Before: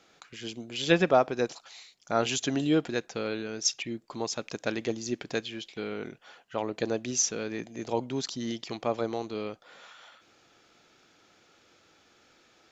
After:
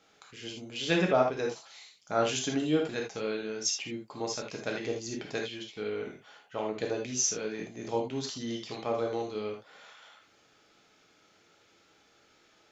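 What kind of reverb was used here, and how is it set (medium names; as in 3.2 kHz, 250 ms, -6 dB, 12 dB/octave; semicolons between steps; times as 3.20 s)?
gated-style reverb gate 100 ms flat, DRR -0.5 dB; trim -5 dB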